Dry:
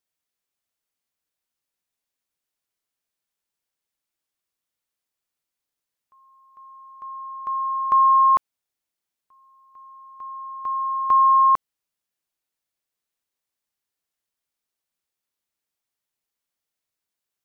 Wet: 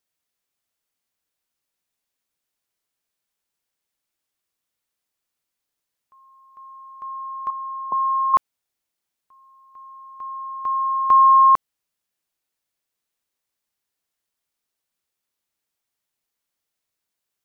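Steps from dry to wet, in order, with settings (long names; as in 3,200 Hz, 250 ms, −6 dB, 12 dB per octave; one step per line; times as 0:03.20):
0:07.50–0:08.34: Chebyshev band-pass filter 140–990 Hz, order 5
level +3 dB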